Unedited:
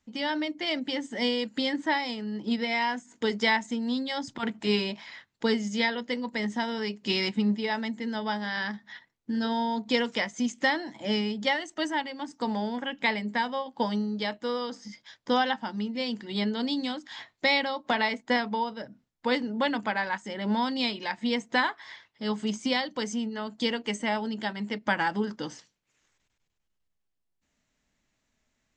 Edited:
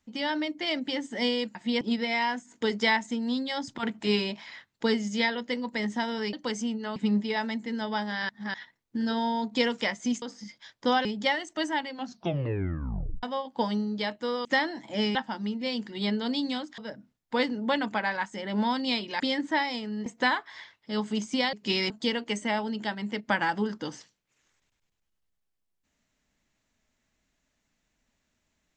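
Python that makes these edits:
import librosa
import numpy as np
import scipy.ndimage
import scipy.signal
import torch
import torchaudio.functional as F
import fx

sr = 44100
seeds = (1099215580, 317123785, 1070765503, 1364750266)

y = fx.edit(x, sr, fx.swap(start_s=1.55, length_s=0.86, other_s=21.12, other_length_s=0.26),
    fx.swap(start_s=6.93, length_s=0.37, other_s=22.85, other_length_s=0.63),
    fx.reverse_span(start_s=8.63, length_s=0.25),
    fx.swap(start_s=10.56, length_s=0.7, other_s=14.66, other_length_s=0.83),
    fx.tape_stop(start_s=12.11, length_s=1.33),
    fx.cut(start_s=17.12, length_s=1.58), tone=tone)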